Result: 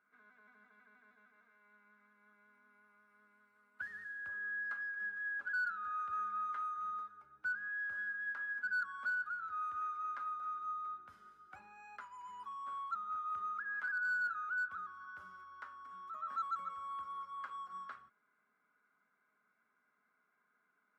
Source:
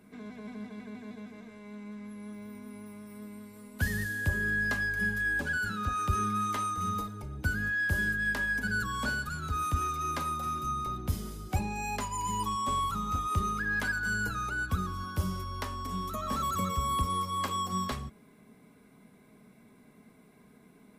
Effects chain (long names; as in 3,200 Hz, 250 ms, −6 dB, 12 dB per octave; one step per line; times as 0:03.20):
resonant band-pass 1,400 Hz, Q 8.9
in parallel at −5 dB: gain into a clipping stage and back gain 33.5 dB
on the sum: level −3.5 dB